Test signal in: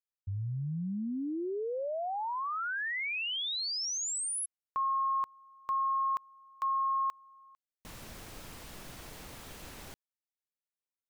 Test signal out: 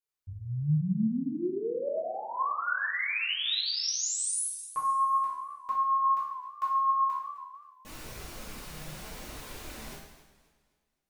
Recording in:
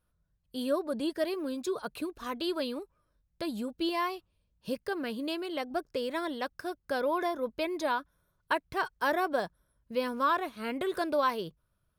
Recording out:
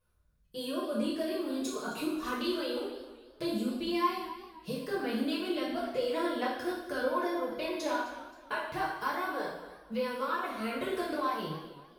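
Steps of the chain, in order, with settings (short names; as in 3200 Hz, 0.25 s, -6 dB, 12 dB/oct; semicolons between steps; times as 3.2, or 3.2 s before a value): compressor, threshold -33 dBFS; flange 0.74 Hz, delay 1.8 ms, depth 4.8 ms, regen +19%; two-slope reverb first 0.81 s, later 2.4 s, from -28 dB, DRR -7 dB; warbling echo 0.263 s, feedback 36%, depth 118 cents, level -15.5 dB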